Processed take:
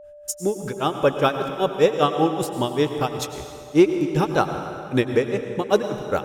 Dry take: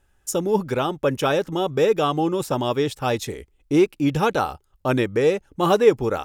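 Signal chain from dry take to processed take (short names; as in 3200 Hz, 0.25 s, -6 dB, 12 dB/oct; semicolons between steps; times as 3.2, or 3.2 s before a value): grains 0.16 s, grains 5.1/s, spray 12 ms, pitch spread up and down by 0 st; plate-style reverb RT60 2.4 s, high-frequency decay 0.8×, pre-delay 85 ms, DRR 7 dB; whine 590 Hz -45 dBFS; gain +3.5 dB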